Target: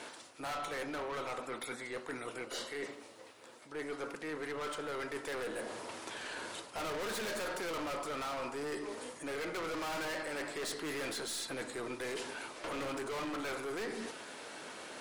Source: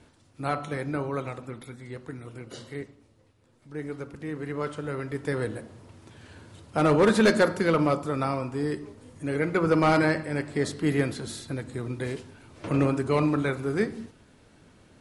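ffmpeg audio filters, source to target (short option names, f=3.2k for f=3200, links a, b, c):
-af "highpass=530,aeval=exprs='(tanh(100*val(0)+0.15)-tanh(0.15))/100':c=same,areverse,acompressor=threshold=-55dB:ratio=4,areverse,volume=15dB"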